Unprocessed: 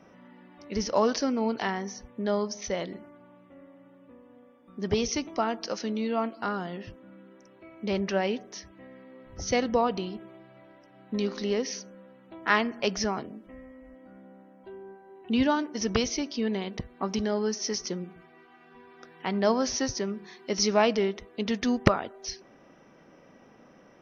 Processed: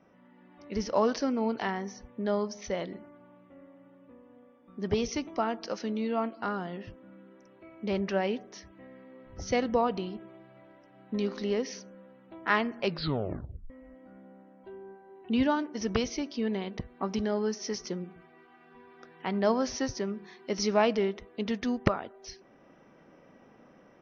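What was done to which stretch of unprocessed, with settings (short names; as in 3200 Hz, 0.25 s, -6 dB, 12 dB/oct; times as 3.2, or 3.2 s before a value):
12.83 tape stop 0.87 s
whole clip: LPF 3400 Hz 6 dB/oct; AGC gain up to 5.5 dB; gain -7 dB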